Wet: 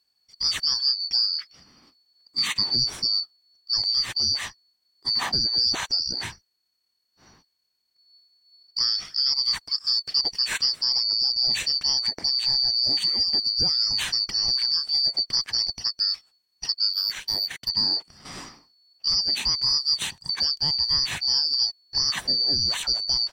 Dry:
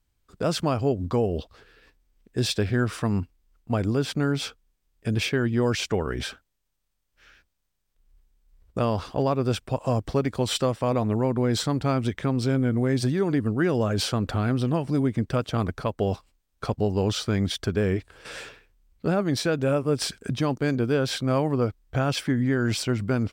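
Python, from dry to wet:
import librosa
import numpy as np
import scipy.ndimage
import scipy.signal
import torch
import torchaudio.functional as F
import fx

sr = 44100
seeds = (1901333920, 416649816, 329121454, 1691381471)

y = fx.band_shuffle(x, sr, order='2341')
y = fx.power_curve(y, sr, exponent=1.4, at=(16.93, 17.69))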